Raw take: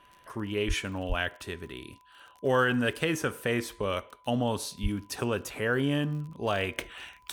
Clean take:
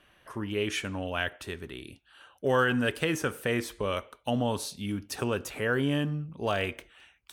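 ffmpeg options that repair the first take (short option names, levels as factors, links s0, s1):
-filter_complex "[0:a]adeclick=t=4,bandreject=f=1000:w=30,asplit=3[s0][s1][s2];[s0]afade=t=out:st=0.67:d=0.02[s3];[s1]highpass=f=140:w=0.5412,highpass=f=140:w=1.3066,afade=t=in:st=0.67:d=0.02,afade=t=out:st=0.79:d=0.02[s4];[s2]afade=t=in:st=0.79:d=0.02[s5];[s3][s4][s5]amix=inputs=3:normalize=0,asplit=3[s6][s7][s8];[s6]afade=t=out:st=1.08:d=0.02[s9];[s7]highpass=f=140:w=0.5412,highpass=f=140:w=1.3066,afade=t=in:st=1.08:d=0.02,afade=t=out:st=1.2:d=0.02[s10];[s8]afade=t=in:st=1.2:d=0.02[s11];[s9][s10][s11]amix=inputs=3:normalize=0,asplit=3[s12][s13][s14];[s12]afade=t=out:st=4.82:d=0.02[s15];[s13]highpass=f=140:w=0.5412,highpass=f=140:w=1.3066,afade=t=in:st=4.82:d=0.02,afade=t=out:st=4.94:d=0.02[s16];[s14]afade=t=in:st=4.94:d=0.02[s17];[s15][s16][s17]amix=inputs=3:normalize=0,asetnsamples=n=441:p=0,asendcmd='6.78 volume volume -11.5dB',volume=1"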